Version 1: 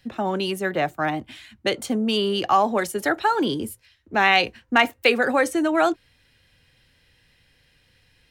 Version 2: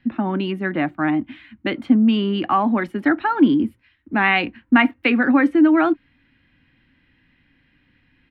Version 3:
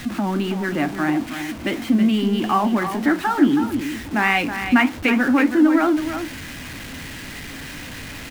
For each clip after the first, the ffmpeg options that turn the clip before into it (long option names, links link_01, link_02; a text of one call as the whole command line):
ffmpeg -i in.wav -af "firequalizer=gain_entry='entry(110,0);entry(280,15);entry(430,-6);entry(1000,2);entry(2100,3);entry(6400,-27)':delay=0.05:min_phase=1,volume=-1dB" out.wav
ffmpeg -i in.wav -af "aeval=exprs='val(0)+0.5*0.0473*sgn(val(0))':channel_layout=same,flanger=delay=9.4:depth=7.8:regen=-66:speed=1.6:shape=sinusoidal,aecho=1:1:322:0.355,volume=2dB" out.wav